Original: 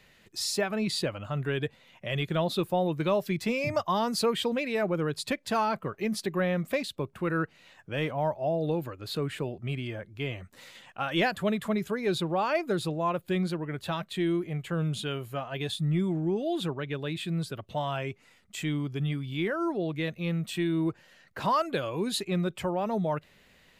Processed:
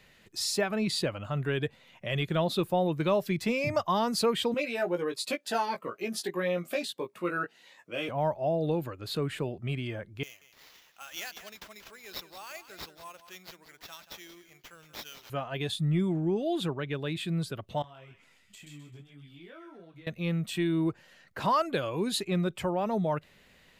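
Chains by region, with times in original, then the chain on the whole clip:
0:04.54–0:08.09: high-pass filter 340 Hz + double-tracking delay 17 ms −4 dB + phaser whose notches keep moving one way rising 1.5 Hz
0:10.23–0:15.30: first difference + single-tap delay 182 ms −12 dB + sample-rate reduction 9,100 Hz
0:17.82–0:20.07: downward compressor 20 to 1, threshold −42 dBFS + delay with a high-pass on its return 129 ms, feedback 34%, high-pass 1,700 Hz, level −3 dB + micro pitch shift up and down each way 24 cents
whole clip: no processing

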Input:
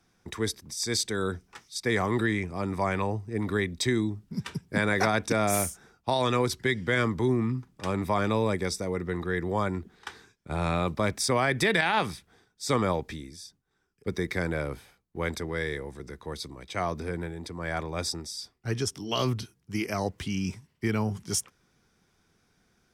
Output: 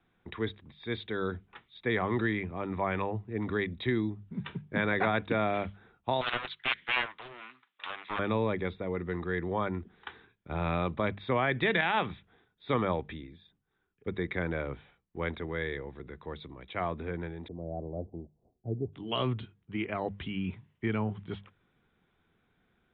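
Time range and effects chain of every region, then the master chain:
0:06.21–0:08.19: high-pass filter 1,300 Hz + high-shelf EQ 2,100 Hz +9 dB + highs frequency-modulated by the lows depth 0.59 ms
0:17.48–0:18.93: elliptic low-pass filter 690 Hz, stop band 60 dB + one half of a high-frequency compander encoder only
whole clip: Butterworth low-pass 3,700 Hz 96 dB per octave; mains-hum notches 50/100/150/200 Hz; level −3 dB

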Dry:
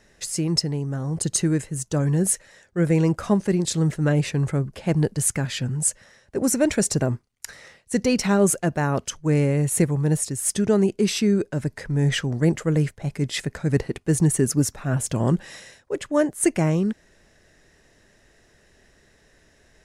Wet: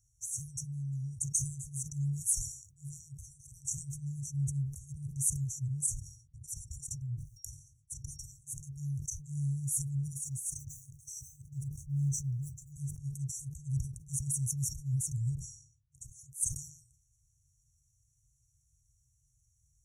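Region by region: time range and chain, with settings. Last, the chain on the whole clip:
0:05.86–0:08.61: noise gate −51 dBFS, range −13 dB + low-shelf EQ 340 Hz +12 dB + downward compressor, threshold −25 dBFS
0:10.18–0:12.72: mu-law and A-law mismatch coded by mu + high-shelf EQ 3,700 Hz −7.5 dB
0:15.35–0:15.95: low-pass that shuts in the quiet parts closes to 1,800 Hz, open at −27 dBFS + downward compressor 2 to 1, threshold −52 dBFS
whole clip: brick-wall band-stop 150–5,600 Hz; high-pass filter 45 Hz 12 dB per octave; level that may fall only so fast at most 88 dB per second; level −7.5 dB

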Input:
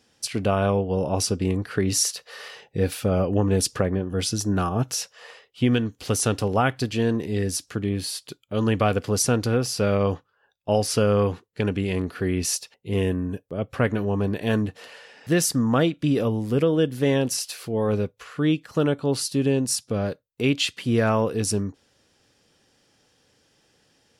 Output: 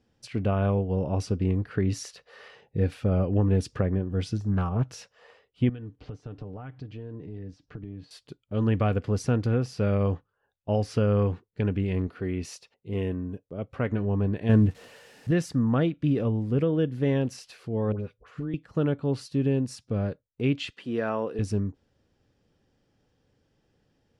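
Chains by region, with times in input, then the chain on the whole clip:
0:04.37–0:04.90: de-essing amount 75% + parametric band 330 Hz −10 dB 0.42 octaves + highs frequency-modulated by the lows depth 0.31 ms
0:05.69–0:08.11: comb filter 6.7 ms, depth 43% + downward compressor, threshold −33 dBFS + high-frequency loss of the air 160 metres
0:12.07–0:13.92: low-shelf EQ 180 Hz −8 dB + notch filter 1,700 Hz, Q 13
0:14.49–0:15.31: spike at every zero crossing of −29.5 dBFS + low-shelf EQ 470 Hz +7 dB
0:17.92–0:18.54: all-pass dispersion highs, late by 73 ms, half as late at 1,200 Hz + downward compressor 3 to 1, threshold −28 dBFS
0:20.70–0:21.39: high-pass filter 300 Hz + notch filter 2,200 Hz, Q 9.8
whole clip: dynamic equaliser 2,100 Hz, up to +5 dB, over −42 dBFS, Q 0.86; Bessel low-pass filter 8,800 Hz, order 2; spectral tilt −3 dB per octave; level −9 dB

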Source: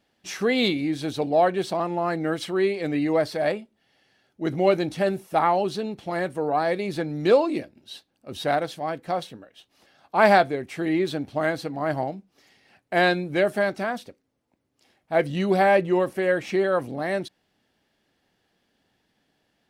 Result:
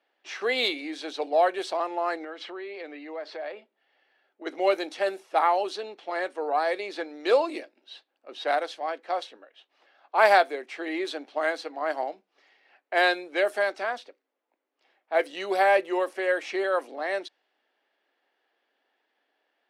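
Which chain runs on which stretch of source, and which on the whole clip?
0:02.24–0:04.46: downward compressor, threshold −29 dBFS + high-frequency loss of the air 70 metres
whole clip: low-pass that shuts in the quiet parts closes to 2,700 Hz, open at −17 dBFS; Bessel high-pass filter 540 Hz, order 8

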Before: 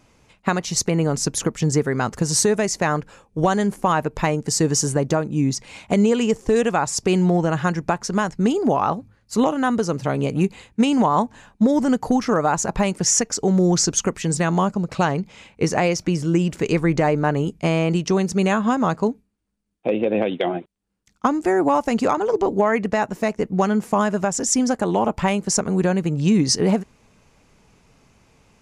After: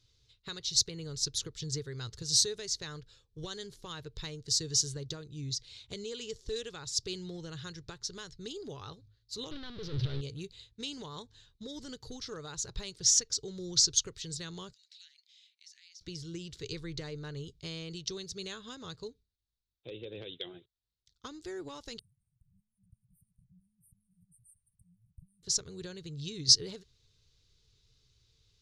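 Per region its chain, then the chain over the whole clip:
0:09.51–0:10.21: compressor whose output falls as the input rises −25 dBFS + power curve on the samples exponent 0.35 + high-frequency loss of the air 330 metres
0:14.73–0:16.01: Butterworth high-pass 1,800 Hz 48 dB per octave + downward compressor 2 to 1, threshold −53 dBFS
0:21.99–0:25.43: low-shelf EQ 140 Hz −8.5 dB + downward compressor 2.5 to 1, threshold −30 dBFS + linear-phase brick-wall band-stop 190–8,400 Hz
whole clip: drawn EQ curve 120 Hz 0 dB, 210 Hz −22 dB, 430 Hz −9 dB, 700 Hz −26 dB, 1,500 Hz −12 dB, 2,500 Hz −11 dB, 3,800 Hz +11 dB, 8,900 Hz −9 dB; expander for the loud parts 1.5 to 1, over −28 dBFS; level −3 dB

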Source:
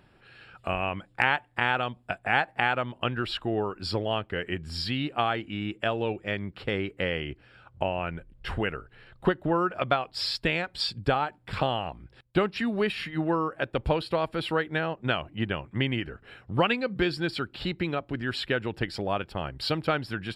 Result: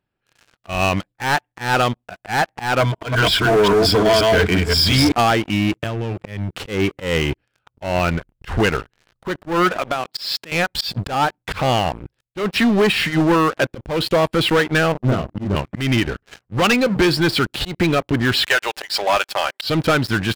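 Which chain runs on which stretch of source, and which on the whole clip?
0:02.80–0:05.12: delay that plays each chunk backwards 176 ms, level −2.5 dB + EQ curve with evenly spaced ripples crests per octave 1.7, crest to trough 13 dB
0:05.72–0:06.52: downward expander −49 dBFS + parametric band 110 Hz +13.5 dB 1.2 octaves + downward compressor 16 to 1, threshold −35 dBFS
0:09.72–0:10.52: high-pass filter 150 Hz 24 dB per octave + downward compressor 3 to 1, threshold −35 dBFS
0:14.92–0:15.56: Savitzky-Golay smoothing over 65 samples + parametric band 880 Hz −12 dB 1.3 octaves + double-tracking delay 30 ms −3.5 dB
0:18.46–0:19.64: high-pass filter 570 Hz 24 dB per octave + high-shelf EQ 2,000 Hz +6 dB + comb filter 5.1 ms, depth 34%
whole clip: leveller curve on the samples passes 5; volume swells 163 ms; noise gate −34 dBFS, range −7 dB; level −2.5 dB

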